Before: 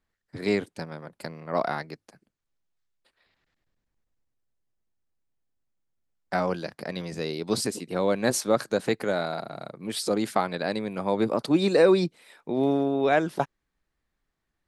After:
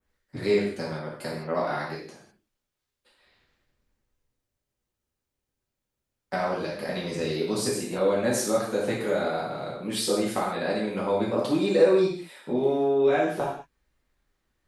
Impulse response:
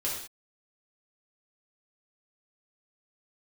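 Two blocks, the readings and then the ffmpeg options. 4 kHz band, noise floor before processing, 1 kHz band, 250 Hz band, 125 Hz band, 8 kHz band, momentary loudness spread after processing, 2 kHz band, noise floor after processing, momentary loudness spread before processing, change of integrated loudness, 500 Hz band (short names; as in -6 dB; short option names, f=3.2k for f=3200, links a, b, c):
0.0 dB, -82 dBFS, -1.0 dB, -1.0 dB, -1.0 dB, +1.0 dB, 12 LU, -1.0 dB, -85 dBFS, 16 LU, 0.0 dB, +1.5 dB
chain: -filter_complex "[0:a]adynamicequalizer=threshold=0.00398:dfrequency=4300:dqfactor=1.8:tfrequency=4300:tqfactor=1.8:attack=5:release=100:ratio=0.375:range=2:mode=cutabove:tftype=bell,acompressor=threshold=-31dB:ratio=2[a];[1:a]atrim=start_sample=2205[b];[a][b]afir=irnorm=-1:irlink=0"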